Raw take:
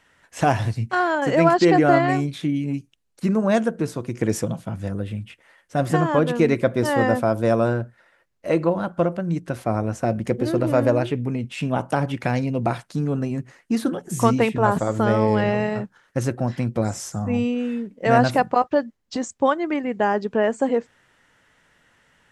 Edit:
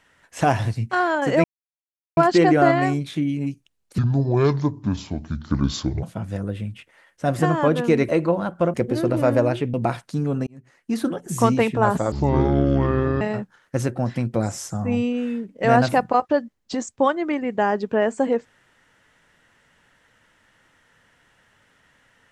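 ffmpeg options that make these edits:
-filter_complex "[0:a]asplit=10[a][b][c][d][e][f][g][h][i][j];[a]atrim=end=1.44,asetpts=PTS-STARTPTS,afade=t=out:st=1.436:d=0.004:c=hsin,apad=pad_dur=0.73[k];[b]atrim=start=1.44:end=3.254,asetpts=PTS-STARTPTS,afade=t=in:d=0.004:c=hsin[l];[c]atrim=start=3.25:end=4.54,asetpts=PTS-STARTPTS,asetrate=27783,aresample=44100[m];[d]atrim=start=4.536:end=6.602[n];[e]atrim=start=8.468:end=9.122[o];[f]atrim=start=10.238:end=11.242[p];[g]atrim=start=12.548:end=13.28,asetpts=PTS-STARTPTS,afade=t=out:st=0.728:d=0.004:c=hsin[q];[h]atrim=start=13.28:end=14.934,asetpts=PTS-STARTPTS,afade=t=in:d=0.61[r];[i]atrim=start=14.93:end=15.63,asetpts=PTS-STARTPTS,asetrate=28224,aresample=44100,atrim=end_sample=48234,asetpts=PTS-STARTPTS[s];[j]atrim=start=15.626[t];[k][l]concat=n=2:v=0:a=1[u];[u][m]acrossfade=d=0.004:c1=hsin:c2=hsin[v];[v][n]acrossfade=d=0.004:c1=hsin:c2=hsin[w];[w][o]acrossfade=d=0.004:c1=hsin:c2=hsin[x];[x][p]acrossfade=d=0.004:c1=hsin:c2=hsin[y];[q][r]concat=n=2:v=0:a=1[z];[y][z]acrossfade=d=0.004:c1=hsin:c2=hsin[aa];[aa][s]acrossfade=d=0.004:c1=hsin:c2=hsin[ab];[ab][t]acrossfade=d=0.004:c1=hsin:c2=hsin"

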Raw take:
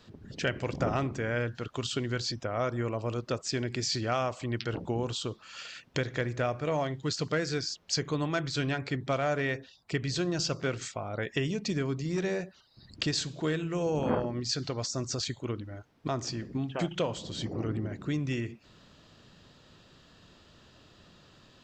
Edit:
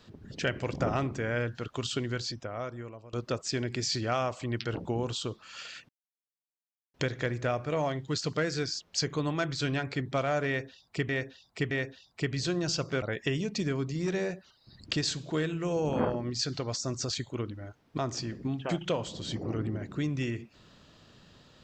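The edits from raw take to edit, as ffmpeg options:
-filter_complex "[0:a]asplit=6[a][b][c][d][e][f];[a]atrim=end=3.13,asetpts=PTS-STARTPTS,afade=t=out:st=1.98:d=1.15:silence=0.0841395[g];[b]atrim=start=3.13:end=5.89,asetpts=PTS-STARTPTS,afade=t=in:d=0.004:c=hsin:silence=0.0841395,afade=t=out:st=2.756:d=0.004:c=hsin,apad=pad_dur=1.05[h];[c]atrim=start=5.89:end=10.042,asetpts=PTS-STARTPTS,afade=t=in:d=0.004:c=hsin[i];[d]atrim=start=9.418:end=10.042[j];[e]atrim=start=9.418:end=10.732[k];[f]atrim=start=11.118[l];[g][h][i]concat=n=3:v=0:a=1[m];[m][j]acrossfade=d=0.004:c1=hsin:c2=hsin[n];[n][k]acrossfade=d=0.004:c1=hsin:c2=hsin[o];[o][l]acrossfade=d=0.004:c1=hsin:c2=hsin"

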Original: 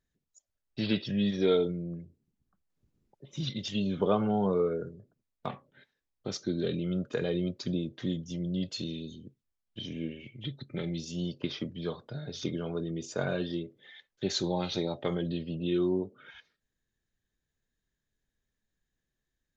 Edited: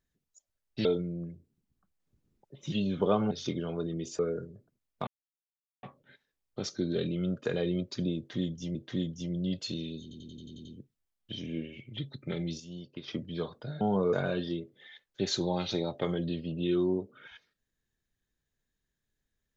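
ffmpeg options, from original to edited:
-filter_complex "[0:a]asplit=18[a][b][c][d][e][f][g][h][i][j][k][l][m][n][o][p][q][r];[a]atrim=end=0.852[s];[b]atrim=start=1.548:end=3.422[t];[c]atrim=start=3.718:end=4.312[u];[d]atrim=start=12.278:end=13.162[v];[e]atrim=start=4.628:end=5.51,asetpts=PTS-STARTPTS,afade=t=out:st=0.878:d=0.004:c=hsin,apad=pad_dur=0.76[w];[f]atrim=start=5.51:end=8.432,asetpts=PTS-STARTPTS,afade=t=in:d=0.004:c=hsin[x];[g]atrim=start=7.848:end=9.212[y];[h]atrim=start=9.118:end=9.212[z];[i]atrim=start=9.118:end=9.212[aa];[j]atrim=start=9.118:end=9.212[ab];[k]atrim=start=9.118:end=9.212[ac];[l]atrim=start=9.118:end=9.212[ad];[m]atrim=start=9.118:end=9.212[ae];[n]atrim=start=9.118:end=11.072[af];[o]atrim=start=11.068:end=11.552,asetpts=PTS-STARTPTS,volume=-9.5dB[ag];[p]atrim=start=11.548:end=12.282[ah];[q]atrim=start=4.308:end=4.632[ai];[r]atrim=start=13.158[aj];[s][t]acrossfade=d=0.004:c1=hsin:c2=hsin[ak];[ak][u]acrossfade=d=0.004:c1=hsin:c2=hsin[al];[al][v]acrossfade=d=0.004:c1=hsin:c2=hsin[am];[w][x]concat=n=2:v=0:a=1[an];[am][an]acrossfade=d=0.004:c1=hsin:c2=hsin[ao];[ao][y]acrossfade=d=0.004:c1=hsin:c2=hsin[ap];[ap][z]acrossfade=d=0.004:c1=hsin:c2=hsin[aq];[aq][aa]acrossfade=d=0.004:c1=hsin:c2=hsin[ar];[ar][ab]acrossfade=d=0.004:c1=hsin:c2=hsin[as];[as][ac]acrossfade=d=0.004:c1=hsin:c2=hsin[at];[at][ad]acrossfade=d=0.004:c1=hsin:c2=hsin[au];[au][ae]acrossfade=d=0.004:c1=hsin:c2=hsin[av];[av][af]acrossfade=d=0.004:c1=hsin:c2=hsin[aw];[aw][ag]acrossfade=d=0.004:c1=hsin:c2=hsin[ax];[ax][ah]acrossfade=d=0.004:c1=hsin:c2=hsin[ay];[ay][ai]acrossfade=d=0.004:c1=hsin:c2=hsin[az];[az][aj]acrossfade=d=0.004:c1=hsin:c2=hsin"

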